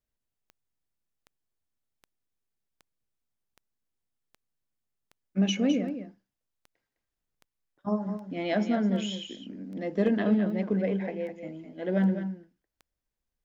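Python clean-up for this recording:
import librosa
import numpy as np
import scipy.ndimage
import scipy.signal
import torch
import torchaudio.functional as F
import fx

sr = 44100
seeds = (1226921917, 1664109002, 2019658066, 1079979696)

y = fx.fix_declip(x, sr, threshold_db=-16.0)
y = fx.fix_declick_ar(y, sr, threshold=10.0)
y = fx.fix_echo_inverse(y, sr, delay_ms=208, level_db=-9.5)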